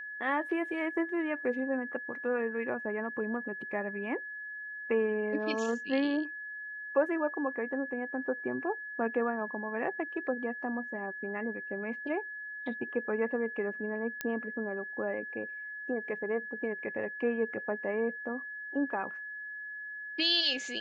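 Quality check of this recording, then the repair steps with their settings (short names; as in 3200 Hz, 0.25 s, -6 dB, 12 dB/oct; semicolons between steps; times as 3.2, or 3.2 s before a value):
tone 1700 Hz -39 dBFS
14.21 pop -17 dBFS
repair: de-click; notch 1700 Hz, Q 30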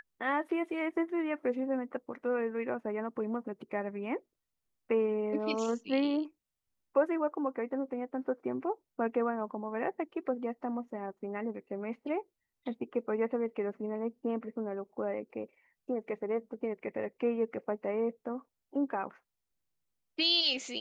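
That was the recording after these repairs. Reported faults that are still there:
none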